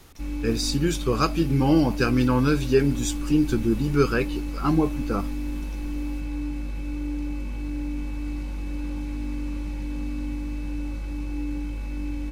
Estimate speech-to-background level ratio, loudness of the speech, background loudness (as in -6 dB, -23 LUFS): 8.5 dB, -23.5 LUFS, -32.0 LUFS